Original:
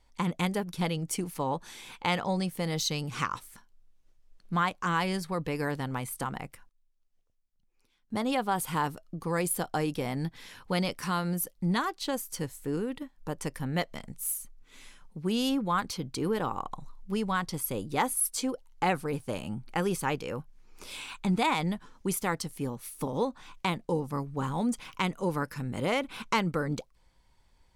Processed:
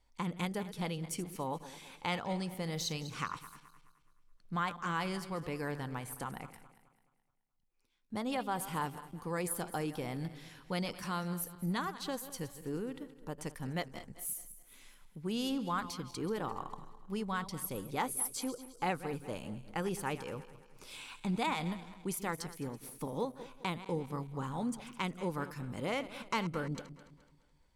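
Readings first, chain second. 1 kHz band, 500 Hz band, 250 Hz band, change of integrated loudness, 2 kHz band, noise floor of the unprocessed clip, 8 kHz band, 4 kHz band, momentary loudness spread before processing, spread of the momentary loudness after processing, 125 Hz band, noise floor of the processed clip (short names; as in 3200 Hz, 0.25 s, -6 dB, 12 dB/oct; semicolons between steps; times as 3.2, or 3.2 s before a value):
-6.5 dB, -6.5 dB, -6.5 dB, -6.5 dB, -6.5 dB, -68 dBFS, -6.5 dB, -6.5 dB, 8 LU, 9 LU, -6.5 dB, -71 dBFS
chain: regenerating reverse delay 0.106 s, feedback 62%, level -13.5 dB; gain -7 dB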